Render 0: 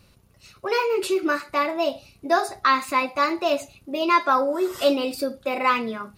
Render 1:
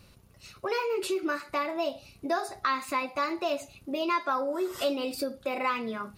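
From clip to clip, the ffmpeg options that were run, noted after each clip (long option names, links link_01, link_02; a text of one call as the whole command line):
ffmpeg -i in.wav -af "acompressor=threshold=-32dB:ratio=2" out.wav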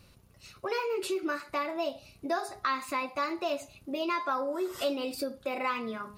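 ffmpeg -i in.wav -af "bandreject=frequency=207.4:width_type=h:width=4,bandreject=frequency=414.8:width_type=h:width=4,bandreject=frequency=622.2:width_type=h:width=4,bandreject=frequency=829.6:width_type=h:width=4,bandreject=frequency=1037:width_type=h:width=4,bandreject=frequency=1244.4:width_type=h:width=4,bandreject=frequency=1451.8:width_type=h:width=4,bandreject=frequency=1659.2:width_type=h:width=4,bandreject=frequency=1866.6:width_type=h:width=4,volume=-2dB" out.wav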